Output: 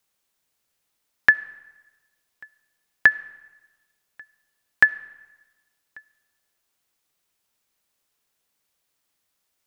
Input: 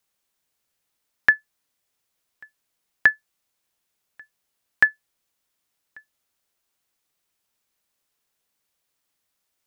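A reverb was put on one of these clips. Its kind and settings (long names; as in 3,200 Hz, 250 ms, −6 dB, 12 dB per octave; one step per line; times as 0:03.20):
comb and all-pass reverb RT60 1.2 s, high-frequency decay 0.8×, pre-delay 25 ms, DRR 19.5 dB
level +1.5 dB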